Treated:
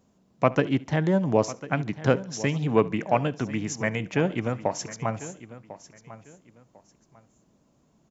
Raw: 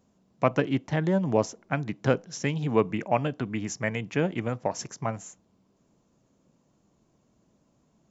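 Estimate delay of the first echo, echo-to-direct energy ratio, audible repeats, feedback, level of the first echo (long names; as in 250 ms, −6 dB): 71 ms, −14.5 dB, 4, repeats not evenly spaced, −22.0 dB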